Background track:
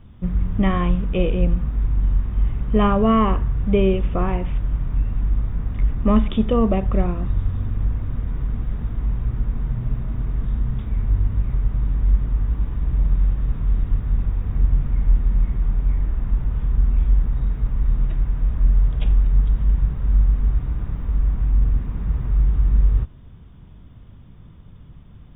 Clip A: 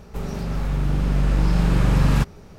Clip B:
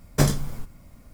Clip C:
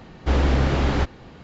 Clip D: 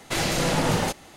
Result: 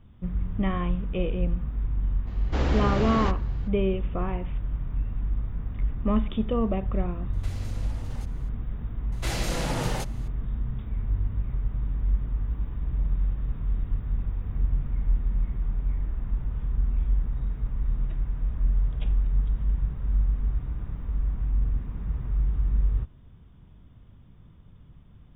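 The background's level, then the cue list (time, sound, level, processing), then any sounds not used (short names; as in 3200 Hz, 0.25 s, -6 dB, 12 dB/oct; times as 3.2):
background track -7.5 dB
2.26 add C -5.5 dB, fades 0.02 s
7.33 add D -14 dB + compressor 10:1, threshold -29 dBFS
9.12 add D -7 dB
not used: A, B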